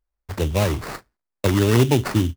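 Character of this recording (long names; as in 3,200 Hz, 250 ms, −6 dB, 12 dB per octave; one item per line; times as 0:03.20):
aliases and images of a low sample rate 3,200 Hz, jitter 20%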